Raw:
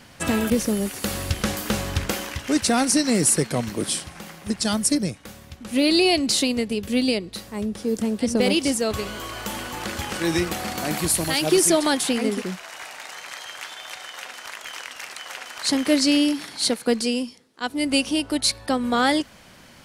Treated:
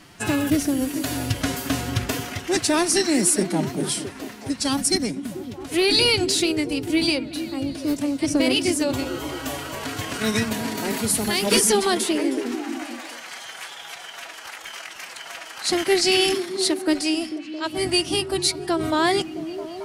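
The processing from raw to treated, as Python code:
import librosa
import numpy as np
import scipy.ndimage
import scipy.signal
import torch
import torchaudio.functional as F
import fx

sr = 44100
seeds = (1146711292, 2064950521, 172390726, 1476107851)

y = fx.pitch_keep_formants(x, sr, semitones=4.5)
y = fx.echo_stepped(y, sr, ms=221, hz=180.0, octaves=0.7, feedback_pct=70, wet_db=-5)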